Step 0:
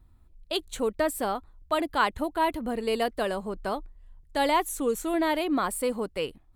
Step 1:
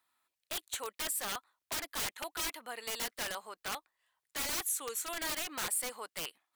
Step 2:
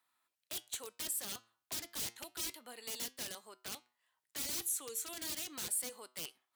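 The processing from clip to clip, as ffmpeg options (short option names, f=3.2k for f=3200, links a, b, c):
-filter_complex "[0:a]highpass=1.3k,acrossover=split=7300[a][b];[a]aeval=exprs='(mod(37.6*val(0)+1,2)-1)/37.6':c=same[c];[c][b]amix=inputs=2:normalize=0,volume=1.5dB"
-filter_complex "[0:a]flanger=delay=7.8:depth=1:regen=85:speed=0.31:shape=sinusoidal,acrossover=split=450|3000[a][b][c];[b]acompressor=threshold=-57dB:ratio=6[d];[a][d][c]amix=inputs=3:normalize=0,highpass=57,volume=2.5dB"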